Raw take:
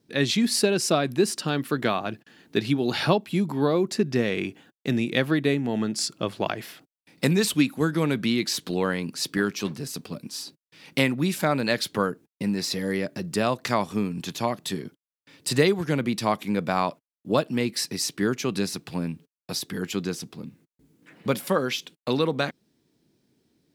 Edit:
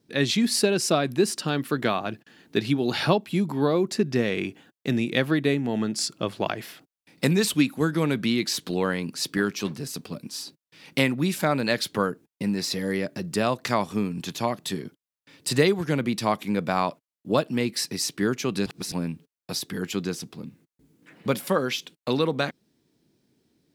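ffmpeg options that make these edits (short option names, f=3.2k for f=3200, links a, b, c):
-filter_complex "[0:a]asplit=3[a][b][c];[a]atrim=end=18.662[d];[b]atrim=start=18.658:end=18.922,asetpts=PTS-STARTPTS,areverse[e];[c]atrim=start=18.918[f];[d][e]acrossfade=d=0.004:c1=hsin:c2=hsin[g];[g][f]acrossfade=d=0.004:c1=hsin:c2=hsin"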